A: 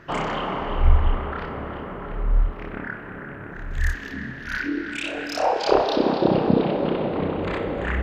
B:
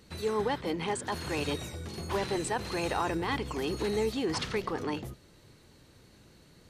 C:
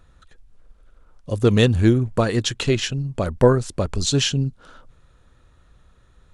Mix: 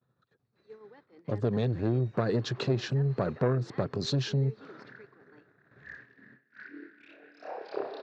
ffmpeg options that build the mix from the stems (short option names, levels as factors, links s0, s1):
-filter_complex "[0:a]adelay=2050,volume=0.119[s0];[1:a]adelay=450,volume=0.1[s1];[2:a]equalizer=f=125:t=o:w=1:g=11,equalizer=f=1000:t=o:w=1:g=4,equalizer=f=2000:t=o:w=1:g=-10,acompressor=threshold=0.2:ratio=6,asoftclip=type=tanh:threshold=0.15,volume=0.794,asplit=2[s2][s3];[s3]apad=whole_len=444478[s4];[s0][s4]sidechaincompress=threshold=0.02:ratio=8:attack=16:release=263[s5];[s5][s1][s2]amix=inputs=3:normalize=0,agate=range=0.0224:threshold=0.00891:ratio=3:detection=peak,highpass=f=140:w=0.5412,highpass=f=140:w=1.3066,equalizer=f=170:t=q:w=4:g=-4,equalizer=f=410:t=q:w=4:g=5,equalizer=f=900:t=q:w=4:g=-4,equalizer=f=1700:t=q:w=4:g=5,equalizer=f=3100:t=q:w=4:g=-9,lowpass=f=4400:w=0.5412,lowpass=f=4400:w=1.3066"